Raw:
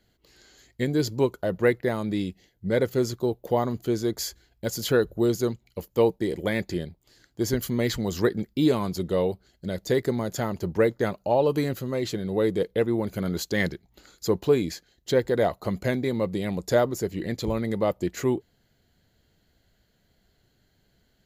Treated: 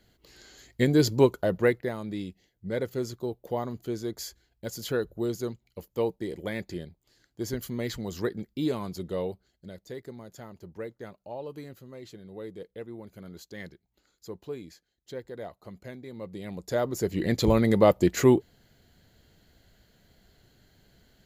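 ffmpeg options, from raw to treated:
ffmpeg -i in.wav -af "volume=25dB,afade=type=out:start_time=1.25:duration=0.68:silence=0.316228,afade=type=out:start_time=9.28:duration=0.57:silence=0.334965,afade=type=in:start_time=16.07:duration=0.71:silence=0.316228,afade=type=in:start_time=16.78:duration=0.67:silence=0.251189" out.wav

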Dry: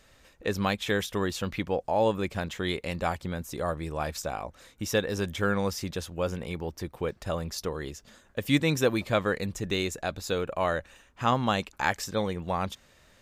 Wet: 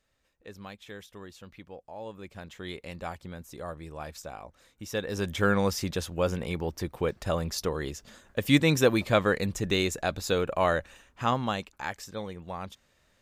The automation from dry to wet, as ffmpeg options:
ffmpeg -i in.wav -af "volume=2.5dB,afade=type=in:start_time=2.05:duration=0.73:silence=0.375837,afade=type=in:start_time=4.89:duration=0.56:silence=0.298538,afade=type=out:start_time=10.71:duration=1.08:silence=0.298538" out.wav

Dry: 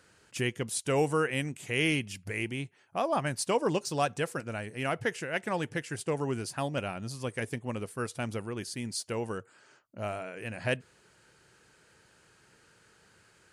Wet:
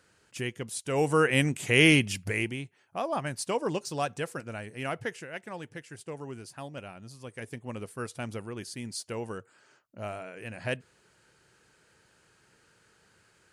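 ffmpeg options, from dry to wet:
ffmpeg -i in.wav -af "volume=14.5dB,afade=type=in:start_time=0.9:duration=0.53:silence=0.281838,afade=type=out:start_time=2.13:duration=0.48:silence=0.316228,afade=type=out:start_time=4.91:duration=0.51:silence=0.473151,afade=type=in:start_time=7.26:duration=0.57:silence=0.473151" out.wav

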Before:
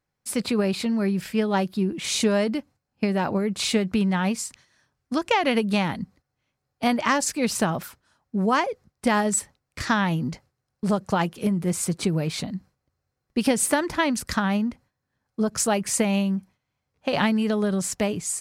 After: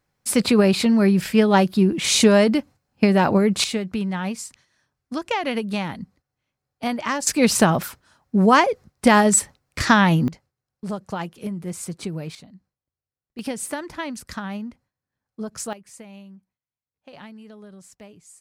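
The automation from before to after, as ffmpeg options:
ffmpeg -i in.wav -af "asetnsamples=nb_out_samples=441:pad=0,asendcmd='3.64 volume volume -3dB;7.27 volume volume 7dB;10.28 volume volume -6dB;12.35 volume volume -15.5dB;13.39 volume volume -7.5dB;15.73 volume volume -20dB',volume=7dB" out.wav

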